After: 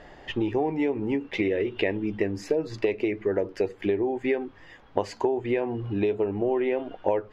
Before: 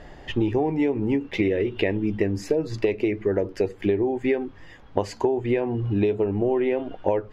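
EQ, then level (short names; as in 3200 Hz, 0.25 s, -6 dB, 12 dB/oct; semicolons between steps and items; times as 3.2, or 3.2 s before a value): low shelf 240 Hz -9 dB; high shelf 6800 Hz -8 dB; 0.0 dB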